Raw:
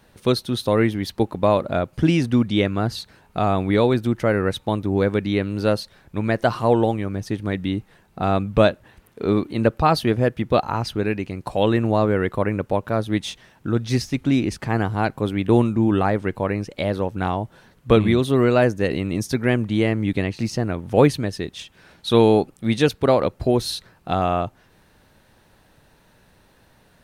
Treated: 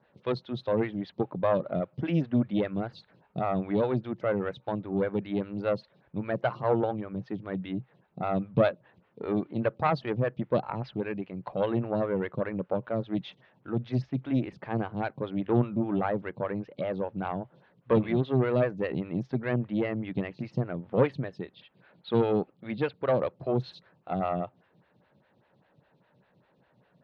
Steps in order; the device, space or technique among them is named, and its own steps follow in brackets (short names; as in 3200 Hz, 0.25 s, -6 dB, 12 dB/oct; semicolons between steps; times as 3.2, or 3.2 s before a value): 21.39–23.17 elliptic low-pass 4700 Hz; vibe pedal into a guitar amplifier (photocell phaser 5 Hz; tube stage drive 9 dB, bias 0.65; speaker cabinet 92–3800 Hz, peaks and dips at 130 Hz +9 dB, 180 Hz +7 dB, 560 Hz +4 dB); gain -4.5 dB